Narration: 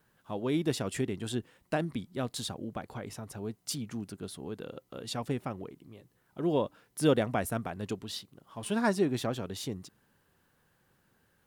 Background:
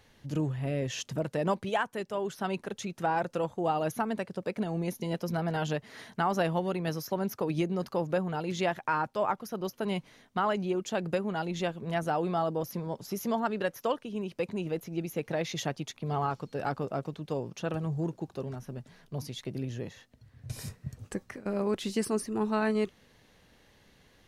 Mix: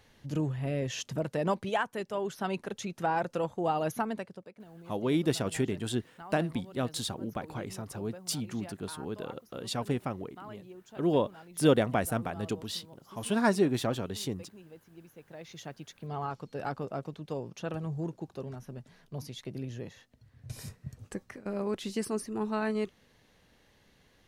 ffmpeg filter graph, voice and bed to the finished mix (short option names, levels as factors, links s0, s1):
-filter_complex "[0:a]adelay=4600,volume=1.26[s0];[1:a]volume=5.62,afade=t=out:st=4:d=0.5:silence=0.125893,afade=t=in:st=15.25:d=1.33:silence=0.16788[s1];[s0][s1]amix=inputs=2:normalize=0"